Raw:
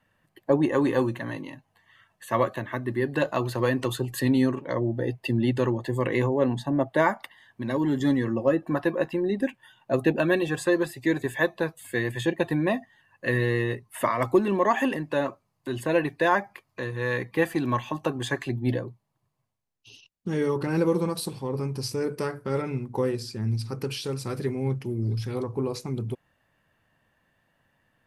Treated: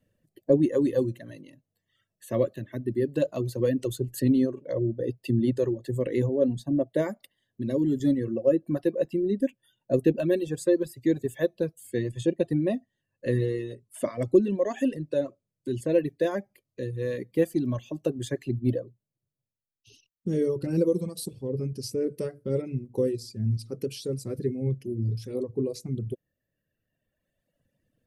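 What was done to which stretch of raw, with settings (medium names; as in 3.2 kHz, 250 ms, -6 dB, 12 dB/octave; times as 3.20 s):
11.90–15.89 s: low-pass 11 kHz 24 dB/octave
whole clip: reverb removal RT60 1.9 s; FFT filter 570 Hz 0 dB, 860 Hz -21 dB, 6.7 kHz -3 dB; trim +1.5 dB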